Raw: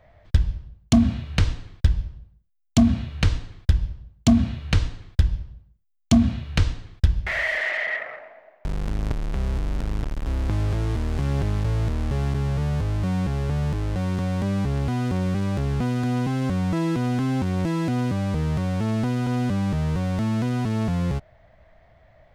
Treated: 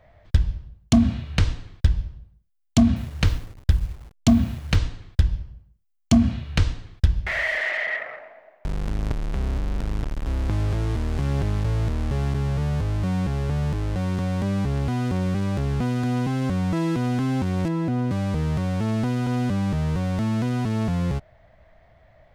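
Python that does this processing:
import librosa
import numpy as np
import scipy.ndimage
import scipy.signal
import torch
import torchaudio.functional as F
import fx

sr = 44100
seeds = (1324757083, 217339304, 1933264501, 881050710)

y = fx.delta_hold(x, sr, step_db=-43.0, at=(2.96, 4.76))
y = fx.notch(y, sr, hz=3700.0, q=10.0, at=(5.42, 6.31))
y = fx.doppler_dist(y, sr, depth_ms=0.87, at=(9.4, 9.8))
y = fx.high_shelf(y, sr, hz=2100.0, db=-11.0, at=(17.68, 18.11))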